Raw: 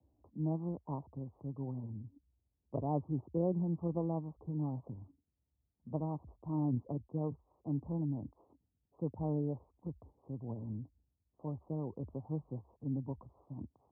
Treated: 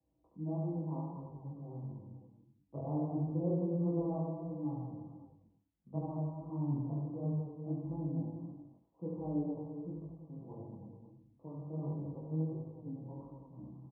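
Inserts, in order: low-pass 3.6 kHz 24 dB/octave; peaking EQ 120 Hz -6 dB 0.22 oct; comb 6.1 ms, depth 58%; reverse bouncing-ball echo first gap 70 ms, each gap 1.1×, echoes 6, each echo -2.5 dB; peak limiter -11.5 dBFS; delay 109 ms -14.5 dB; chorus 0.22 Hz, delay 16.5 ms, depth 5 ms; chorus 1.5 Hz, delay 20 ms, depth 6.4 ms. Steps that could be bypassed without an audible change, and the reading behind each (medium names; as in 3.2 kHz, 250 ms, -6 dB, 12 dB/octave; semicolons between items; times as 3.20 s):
low-pass 3.6 kHz: input has nothing above 960 Hz; peak limiter -11.5 dBFS: peak at its input -15.0 dBFS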